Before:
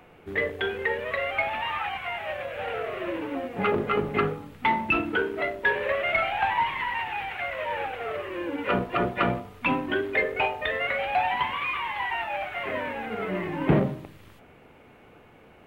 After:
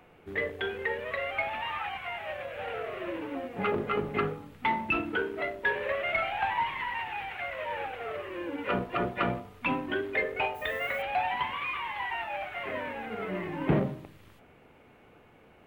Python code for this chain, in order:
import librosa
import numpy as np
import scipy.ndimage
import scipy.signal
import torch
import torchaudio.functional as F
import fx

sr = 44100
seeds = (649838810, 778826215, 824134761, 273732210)

y = fx.dmg_noise_colour(x, sr, seeds[0], colour='violet', level_db=-51.0, at=(10.54, 11.01), fade=0.02)
y = F.gain(torch.from_numpy(y), -4.5).numpy()